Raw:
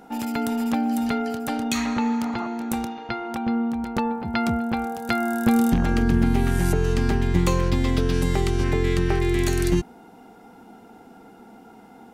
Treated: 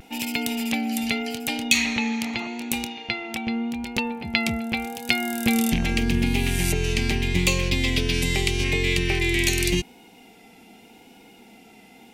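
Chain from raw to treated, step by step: resonant high shelf 1800 Hz +9.5 dB, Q 3; vibrato 0.83 Hz 37 cents; gain -3 dB

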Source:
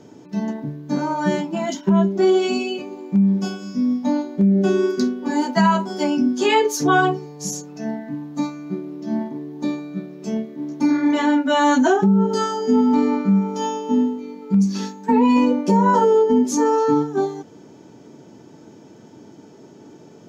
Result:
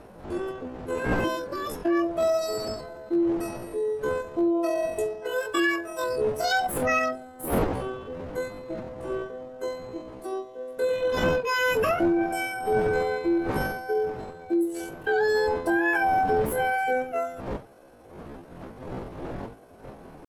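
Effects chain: wind noise 310 Hz -28 dBFS; pitch shift +9.5 st; gain -8 dB

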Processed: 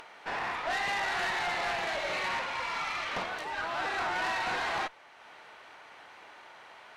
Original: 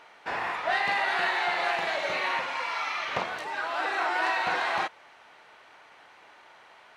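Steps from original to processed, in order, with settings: upward compressor, threshold -43 dBFS; tube stage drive 27 dB, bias 0.45

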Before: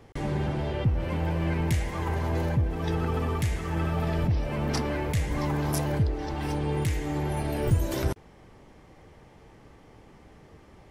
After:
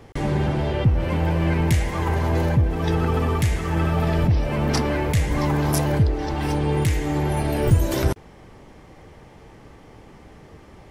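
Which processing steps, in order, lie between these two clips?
gain +6.5 dB

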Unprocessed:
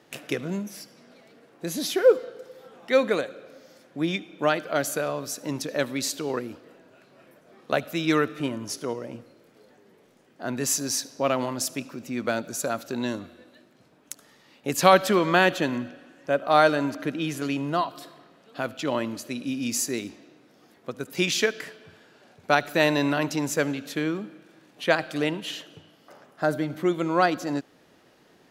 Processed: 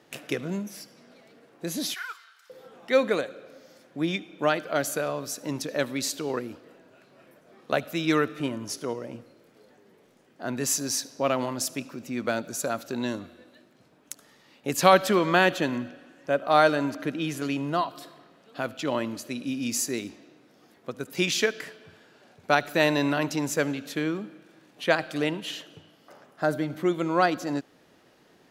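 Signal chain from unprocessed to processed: 1.94–2.5 inverse Chebyshev high-pass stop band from 570 Hz, stop band 40 dB; gain -1 dB

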